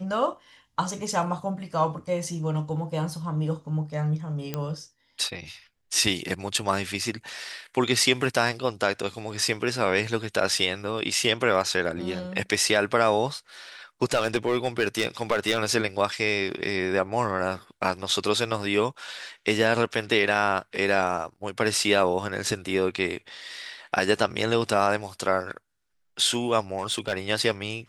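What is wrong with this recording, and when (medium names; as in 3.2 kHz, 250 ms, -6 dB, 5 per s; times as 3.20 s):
4.54 s: pop -14 dBFS
14.12–15.59 s: clipped -16.5 dBFS
26.75–27.14 s: clipped -20 dBFS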